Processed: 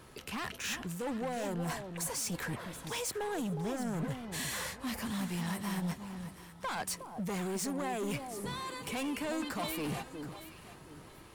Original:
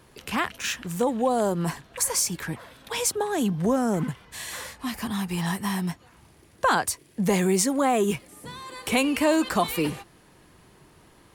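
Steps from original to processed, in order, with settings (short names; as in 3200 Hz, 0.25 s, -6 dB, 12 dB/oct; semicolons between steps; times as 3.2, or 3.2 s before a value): reverse; compressor 4:1, threshold -32 dBFS, peak gain reduction 13 dB; reverse; overloaded stage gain 33 dB; whine 1300 Hz -66 dBFS; echo with dull and thin repeats by turns 0.363 s, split 1000 Hz, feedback 51%, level -7 dB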